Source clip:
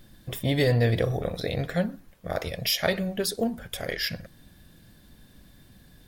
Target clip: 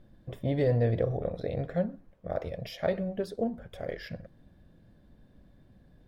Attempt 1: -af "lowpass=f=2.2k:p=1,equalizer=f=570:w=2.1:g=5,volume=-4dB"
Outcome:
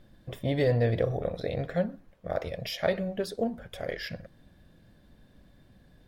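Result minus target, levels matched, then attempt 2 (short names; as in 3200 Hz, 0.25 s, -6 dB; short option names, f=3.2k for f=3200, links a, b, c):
2000 Hz band +5.0 dB
-af "lowpass=f=760:p=1,equalizer=f=570:w=2.1:g=5,volume=-4dB"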